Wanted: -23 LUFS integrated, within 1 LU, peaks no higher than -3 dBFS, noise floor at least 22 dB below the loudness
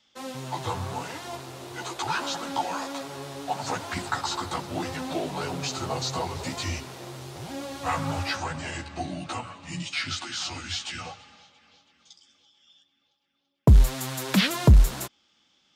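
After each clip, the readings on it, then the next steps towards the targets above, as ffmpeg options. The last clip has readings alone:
loudness -28.0 LUFS; peak level -9.0 dBFS; loudness target -23.0 LUFS
-> -af "volume=1.78"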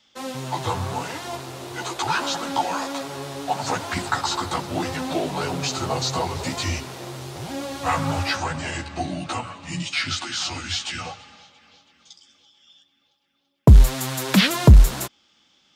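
loudness -23.0 LUFS; peak level -4.0 dBFS; noise floor -65 dBFS

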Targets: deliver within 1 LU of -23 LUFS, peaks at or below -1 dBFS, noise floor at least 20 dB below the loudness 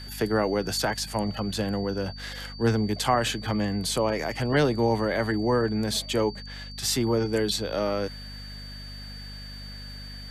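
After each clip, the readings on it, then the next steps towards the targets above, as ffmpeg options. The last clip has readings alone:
hum 50 Hz; highest harmonic 250 Hz; hum level -38 dBFS; steady tone 4.6 kHz; tone level -42 dBFS; loudness -26.5 LUFS; peak level -10.0 dBFS; loudness target -23.0 LUFS
-> -af "bandreject=f=50:t=h:w=6,bandreject=f=100:t=h:w=6,bandreject=f=150:t=h:w=6,bandreject=f=200:t=h:w=6,bandreject=f=250:t=h:w=6"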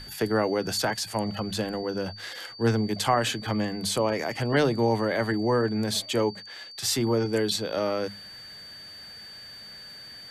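hum not found; steady tone 4.6 kHz; tone level -42 dBFS
-> -af "bandreject=f=4600:w=30"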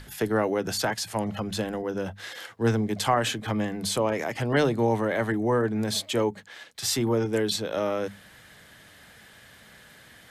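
steady tone not found; loudness -27.0 LUFS; peak level -10.5 dBFS; loudness target -23.0 LUFS
-> -af "volume=1.58"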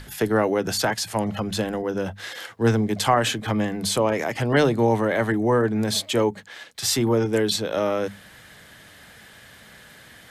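loudness -23.0 LUFS; peak level -6.5 dBFS; noise floor -48 dBFS

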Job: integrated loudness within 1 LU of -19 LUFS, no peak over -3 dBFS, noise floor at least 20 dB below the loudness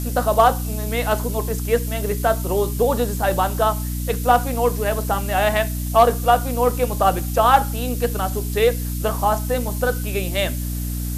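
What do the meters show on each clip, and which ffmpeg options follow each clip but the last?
hum 60 Hz; highest harmonic 300 Hz; hum level -23 dBFS; noise floor -25 dBFS; noise floor target -41 dBFS; loudness -20.5 LUFS; peak level -3.0 dBFS; loudness target -19.0 LUFS
-> -af "bandreject=f=60:t=h:w=6,bandreject=f=120:t=h:w=6,bandreject=f=180:t=h:w=6,bandreject=f=240:t=h:w=6,bandreject=f=300:t=h:w=6"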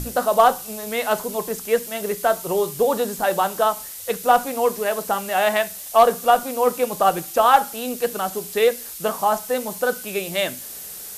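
hum not found; noise floor -36 dBFS; noise floor target -41 dBFS
-> -af "afftdn=nr=6:nf=-36"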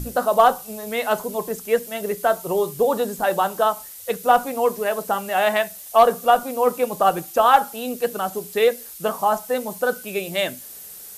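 noise floor -39 dBFS; noise floor target -41 dBFS
-> -af "afftdn=nr=6:nf=-39"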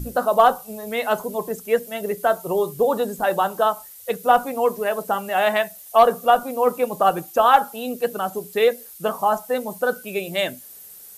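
noise floor -43 dBFS; loudness -21.5 LUFS; peak level -4.0 dBFS; loudness target -19.0 LUFS
-> -af "volume=1.33,alimiter=limit=0.708:level=0:latency=1"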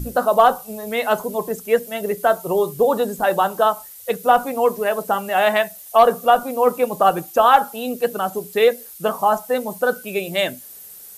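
loudness -19.0 LUFS; peak level -3.0 dBFS; noise floor -40 dBFS

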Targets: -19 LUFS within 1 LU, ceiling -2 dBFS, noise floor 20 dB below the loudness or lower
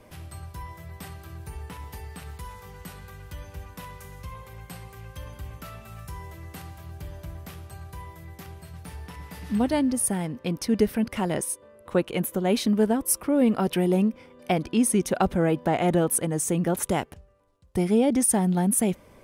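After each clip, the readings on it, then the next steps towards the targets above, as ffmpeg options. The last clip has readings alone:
loudness -24.5 LUFS; peak level -8.5 dBFS; loudness target -19.0 LUFS
-> -af "volume=1.88"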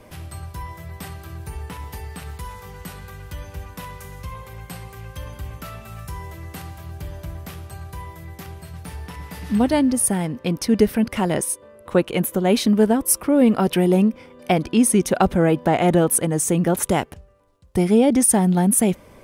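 loudness -19.0 LUFS; peak level -3.0 dBFS; noise floor -47 dBFS

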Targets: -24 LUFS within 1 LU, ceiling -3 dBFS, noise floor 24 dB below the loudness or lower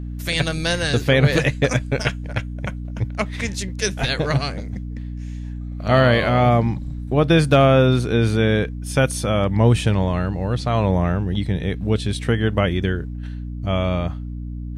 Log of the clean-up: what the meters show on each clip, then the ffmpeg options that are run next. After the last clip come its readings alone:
hum 60 Hz; highest harmonic 300 Hz; hum level -27 dBFS; loudness -20.0 LUFS; peak level -2.5 dBFS; loudness target -24.0 LUFS
-> -af "bandreject=f=60:t=h:w=4,bandreject=f=120:t=h:w=4,bandreject=f=180:t=h:w=4,bandreject=f=240:t=h:w=4,bandreject=f=300:t=h:w=4"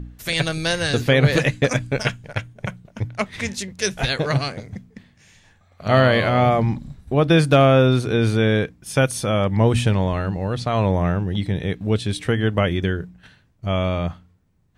hum not found; loudness -20.5 LUFS; peak level -3.0 dBFS; loudness target -24.0 LUFS
-> -af "volume=0.668"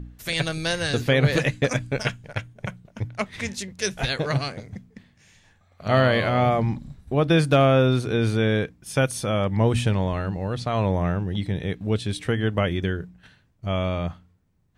loudness -24.0 LUFS; peak level -6.5 dBFS; noise floor -61 dBFS

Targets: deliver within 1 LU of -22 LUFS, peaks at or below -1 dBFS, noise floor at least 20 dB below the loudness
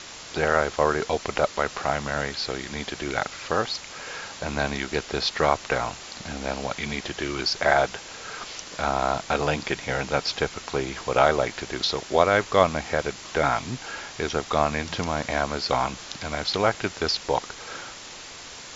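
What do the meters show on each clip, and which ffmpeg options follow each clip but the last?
noise floor -41 dBFS; noise floor target -46 dBFS; loudness -26.0 LUFS; peak level -2.5 dBFS; loudness target -22.0 LUFS
-> -af "afftdn=nr=6:nf=-41"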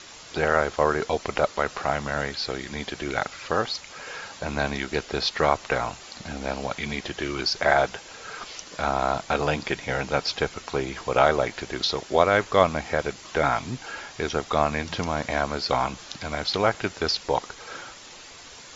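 noise floor -45 dBFS; noise floor target -46 dBFS
-> -af "afftdn=nr=6:nf=-45"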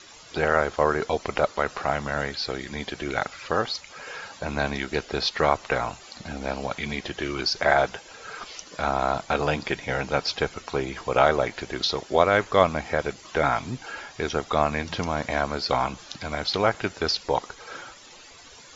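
noise floor -48 dBFS; loudness -26.0 LUFS; peak level -2.5 dBFS; loudness target -22.0 LUFS
-> -af "volume=1.58,alimiter=limit=0.891:level=0:latency=1"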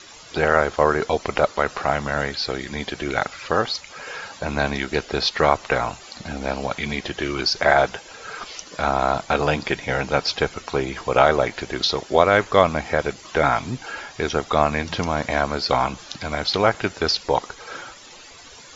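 loudness -22.0 LUFS; peak level -1.0 dBFS; noise floor -44 dBFS

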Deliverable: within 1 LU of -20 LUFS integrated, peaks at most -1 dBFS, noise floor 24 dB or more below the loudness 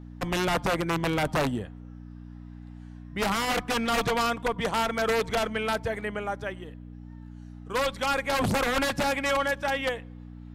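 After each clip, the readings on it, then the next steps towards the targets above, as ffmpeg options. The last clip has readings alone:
hum 60 Hz; highest harmonic 300 Hz; hum level -41 dBFS; loudness -27.5 LUFS; peak level -16.0 dBFS; loudness target -20.0 LUFS
-> -af "bandreject=f=60:t=h:w=4,bandreject=f=120:t=h:w=4,bandreject=f=180:t=h:w=4,bandreject=f=240:t=h:w=4,bandreject=f=300:t=h:w=4"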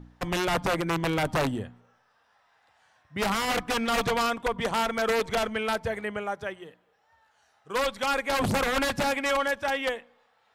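hum not found; loudness -27.5 LUFS; peak level -16.5 dBFS; loudness target -20.0 LUFS
-> -af "volume=2.37"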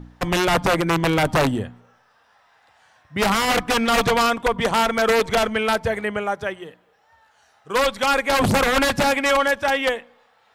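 loudness -20.0 LUFS; peak level -9.0 dBFS; noise floor -60 dBFS

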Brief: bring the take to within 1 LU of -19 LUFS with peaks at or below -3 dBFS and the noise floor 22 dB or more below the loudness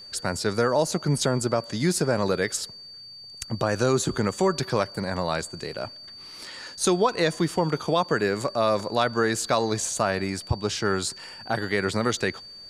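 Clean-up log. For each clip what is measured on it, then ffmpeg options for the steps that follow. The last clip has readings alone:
steady tone 4.6 kHz; tone level -41 dBFS; loudness -25.5 LUFS; peak level -8.0 dBFS; loudness target -19.0 LUFS
-> -af "bandreject=f=4600:w=30"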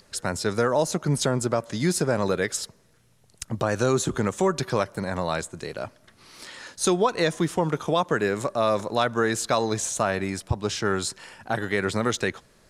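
steady tone not found; loudness -25.5 LUFS; peak level -8.0 dBFS; loudness target -19.0 LUFS
-> -af "volume=2.11,alimiter=limit=0.708:level=0:latency=1"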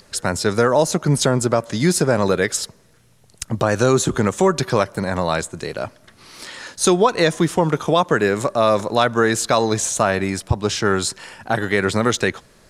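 loudness -19.0 LUFS; peak level -3.0 dBFS; noise floor -53 dBFS

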